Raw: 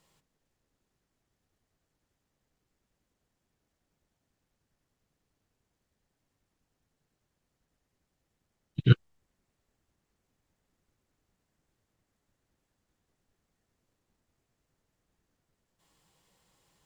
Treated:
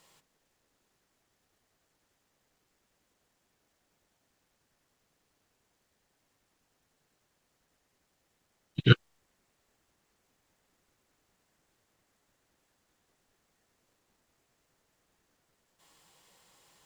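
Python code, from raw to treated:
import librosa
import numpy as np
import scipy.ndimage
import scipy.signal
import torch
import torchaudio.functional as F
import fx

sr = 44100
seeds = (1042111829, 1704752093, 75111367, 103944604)

y = fx.low_shelf(x, sr, hz=260.0, db=-11.5)
y = y * 10.0 ** (8.0 / 20.0)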